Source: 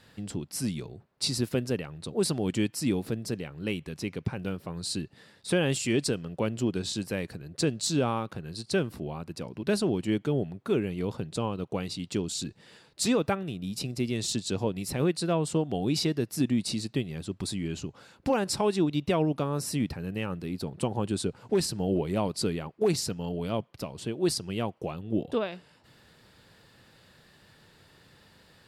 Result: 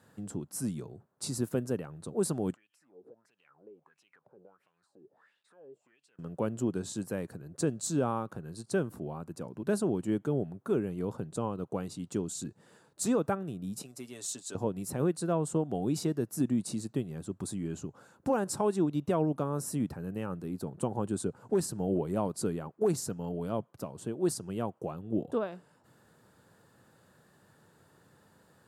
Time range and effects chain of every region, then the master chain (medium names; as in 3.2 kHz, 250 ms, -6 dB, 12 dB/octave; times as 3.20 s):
2.54–6.19 s: companding laws mixed up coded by mu + compression 16:1, threshold -35 dBFS + wah-wah 1.5 Hz 400–3000 Hz, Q 6
13.82–14.55 s: high-pass 1.2 kHz 6 dB/octave + comb 7.2 ms, depth 51%
whole clip: high-pass 100 Hz; high-order bell 3.2 kHz -11.5 dB; trim -2.5 dB